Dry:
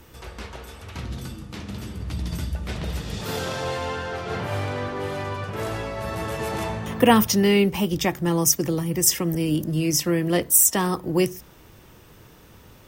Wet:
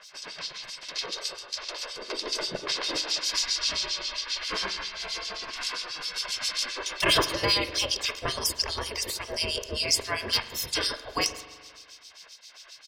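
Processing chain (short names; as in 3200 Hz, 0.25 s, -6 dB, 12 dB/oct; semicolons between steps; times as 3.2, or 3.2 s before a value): LPF 6700 Hz 12 dB/oct; spectral gate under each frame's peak -20 dB weak; bell 4900 Hz +13 dB 0.72 oct; comb 1.9 ms, depth 47%; dynamic EQ 340 Hz, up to +8 dB, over -59 dBFS, Q 2.1; hard clip -20.5 dBFS, distortion -21 dB; harmonic tremolo 7.5 Hz, depth 100%, crossover 2400 Hz; spring tank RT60 1.6 s, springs 42 ms, chirp 20 ms, DRR 11.5 dB; gain +9 dB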